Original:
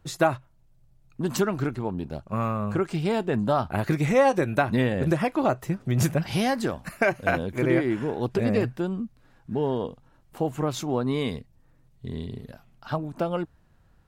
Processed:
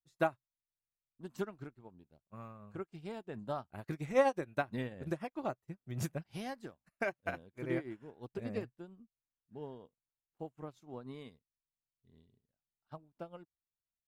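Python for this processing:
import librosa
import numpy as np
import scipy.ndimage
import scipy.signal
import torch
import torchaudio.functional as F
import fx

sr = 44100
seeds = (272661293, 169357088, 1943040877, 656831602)

y = fx.upward_expand(x, sr, threshold_db=-42.0, expansion=2.5)
y = F.gain(torch.from_numpy(y), -6.5).numpy()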